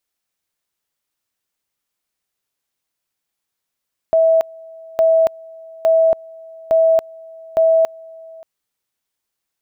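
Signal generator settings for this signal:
tone at two levels in turn 651 Hz −9.5 dBFS, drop 25 dB, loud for 0.28 s, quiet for 0.58 s, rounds 5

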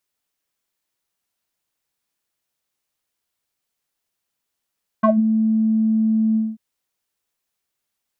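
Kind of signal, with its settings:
subtractive voice square A3 12 dB per octave, low-pass 240 Hz, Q 6.9, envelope 2.5 octaves, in 0.15 s, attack 10 ms, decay 0.17 s, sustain −14.5 dB, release 0.21 s, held 1.33 s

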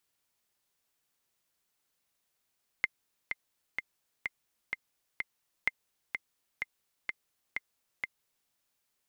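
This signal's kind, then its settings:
click track 127 BPM, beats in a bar 6, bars 2, 2,090 Hz, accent 6.5 dB −13 dBFS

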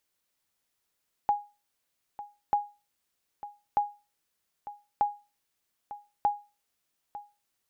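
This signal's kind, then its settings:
ping with an echo 824 Hz, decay 0.29 s, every 1.24 s, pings 5, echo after 0.90 s, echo −15.5 dB −17 dBFS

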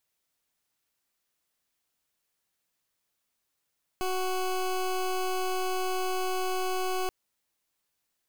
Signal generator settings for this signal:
pulse wave 371 Hz, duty 20% −29 dBFS 3.08 s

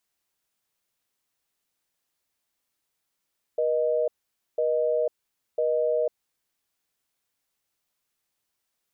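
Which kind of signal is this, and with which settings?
call progress tone busy tone, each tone −24 dBFS 2.99 s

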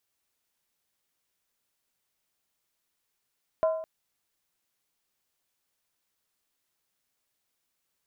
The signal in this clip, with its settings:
struck skin length 0.21 s, lowest mode 641 Hz, decay 0.71 s, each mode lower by 10.5 dB, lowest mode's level −19 dB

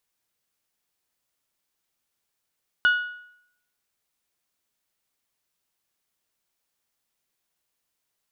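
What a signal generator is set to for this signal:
struck metal bell, lowest mode 1,460 Hz, decay 0.71 s, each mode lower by 11.5 dB, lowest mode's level −13.5 dB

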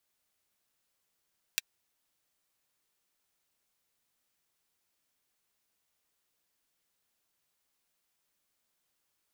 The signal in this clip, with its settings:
closed synth hi-hat, high-pass 2,300 Hz, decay 0.03 s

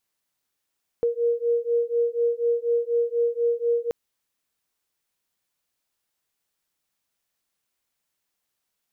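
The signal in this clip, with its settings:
two tones that beat 469 Hz, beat 4.1 Hz, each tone −23.5 dBFS 2.88 s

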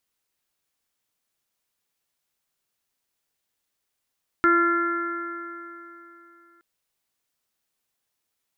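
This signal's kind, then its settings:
stiff-string partials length 2.17 s, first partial 339 Hz, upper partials −19.5/−14/3.5/−6/−13 dB, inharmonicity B 0.0017, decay 3.16 s, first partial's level −19.5 dB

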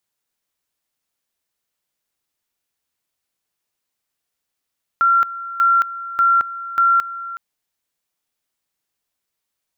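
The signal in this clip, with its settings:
tone at two levels in turn 1,370 Hz −11 dBFS, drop 15.5 dB, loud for 0.22 s, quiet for 0.37 s, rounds 4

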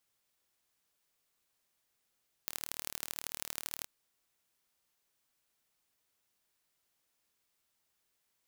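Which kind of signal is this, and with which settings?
impulse train 38.1 per second, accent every 3, −8.5 dBFS 1.37 s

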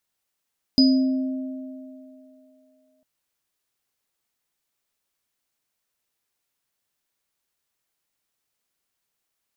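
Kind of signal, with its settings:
inharmonic partials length 2.25 s, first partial 262 Hz, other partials 622/4,960 Hz, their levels −18.5/−3 dB, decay 2.44 s, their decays 3.92/0.47 s, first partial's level −12 dB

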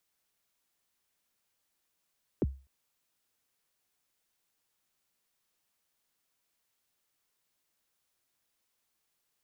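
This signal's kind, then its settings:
synth kick length 0.25 s, from 480 Hz, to 67 Hz, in 31 ms, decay 0.33 s, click off, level −21.5 dB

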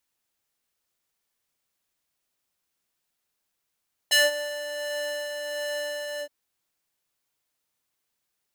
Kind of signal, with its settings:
subtractive patch with tremolo D5, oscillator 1 square, oscillator 2 saw, interval −12 semitones, detune 15 cents, oscillator 2 level −17.5 dB, noise −29 dB, filter highpass, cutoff 300 Hz, Q 1.1, filter envelope 3.5 octaves, filter decay 0.14 s, attack 15 ms, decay 0.18 s, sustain −19 dB, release 0.08 s, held 2.09 s, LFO 1.4 Hz, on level 3.5 dB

